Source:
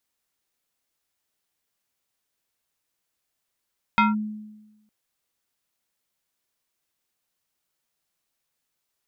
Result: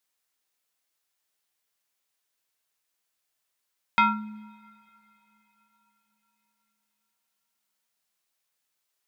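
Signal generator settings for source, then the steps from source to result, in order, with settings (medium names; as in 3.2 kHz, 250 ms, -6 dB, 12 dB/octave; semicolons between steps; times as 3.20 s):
FM tone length 0.91 s, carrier 213 Hz, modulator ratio 5.43, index 1.9, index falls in 0.17 s linear, decay 1.09 s, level -13 dB
bass shelf 400 Hz -9.5 dB; two-slope reverb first 0.41 s, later 4.8 s, from -22 dB, DRR 12.5 dB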